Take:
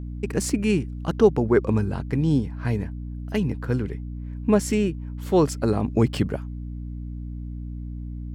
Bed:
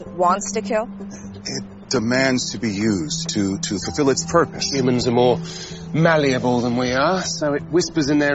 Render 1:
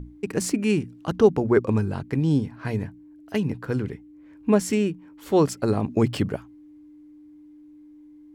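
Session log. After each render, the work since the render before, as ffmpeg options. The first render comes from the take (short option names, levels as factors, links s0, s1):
-af "bandreject=f=60:t=h:w=6,bandreject=f=120:t=h:w=6,bandreject=f=180:t=h:w=6,bandreject=f=240:t=h:w=6"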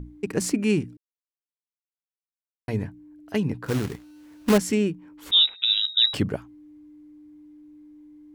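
-filter_complex "[0:a]asettb=1/sr,asplit=3[s0][s1][s2];[s0]atrim=end=3.664[s3];[s1]atrim=start=3.66:end=4.58,asetpts=PTS-STARTPTS,afade=t=in:d=0.004:c=qsin,afade=t=out:st=0.916:d=0.004:c=qsin,acrusher=bits=2:mode=log:mix=0:aa=0.000001[s4];[s2]atrim=start=4.576[s5];[s3][s4]acrossfade=d=0.004:c1=hsin:c2=qsin[s6];[s6][s5]acrossfade=d=0.004:c1=qsin:c2=hsin,asettb=1/sr,asplit=3[s7][s8][s9];[s7]atrim=end=5.314[s10];[s8]atrim=start=5.31:end=6.14,asetpts=PTS-STARTPTS,afade=t=in:d=0.004:c=qsin,afade=t=out:st=0.826:d=0.004:c=qsin,lowpass=f=3400:t=q:w=0.5098,lowpass=f=3400:t=q:w=0.6013,lowpass=f=3400:t=q:w=0.9,lowpass=f=3400:t=q:w=2.563,afreqshift=-4000[s11];[s9]atrim=start=6.136[s12];[s10][s11]acrossfade=d=0.004:c1=hsin:c2=qsin[s13];[s13][s12]acrossfade=d=0.004:c1=qsin:c2=hsin,asplit=3[s14][s15][s16];[s14]atrim=end=0.97,asetpts=PTS-STARTPTS,afade=t=out:st=0.966:d=0.004:c=hsin[s17];[s15]atrim=start=0.97:end=2.68,asetpts=PTS-STARTPTS,volume=0[s18];[s16]atrim=start=2.68,asetpts=PTS-STARTPTS,afade=t=in:d=0.004:c=hsin[s19];[s17][s18][s19]concat=n=3:v=0:a=1"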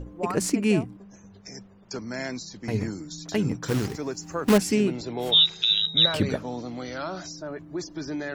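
-filter_complex "[1:a]volume=0.178[s0];[0:a][s0]amix=inputs=2:normalize=0"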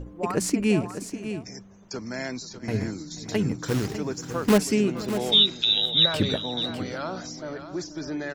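-af "aecho=1:1:483|600:0.112|0.299"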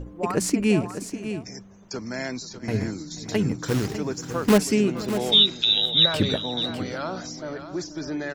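-af "volume=1.19"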